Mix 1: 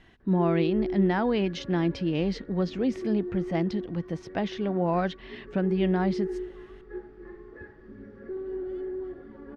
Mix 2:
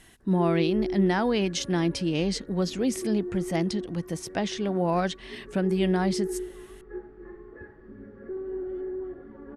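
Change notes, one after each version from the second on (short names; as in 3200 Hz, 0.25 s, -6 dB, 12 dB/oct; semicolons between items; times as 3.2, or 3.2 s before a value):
background: add LPF 1700 Hz 12 dB/oct; master: remove air absorption 240 m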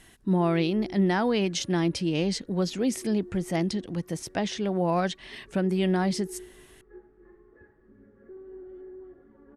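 background -10.5 dB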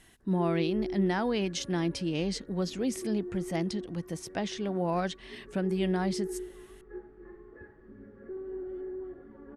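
speech -4.5 dB; background +5.5 dB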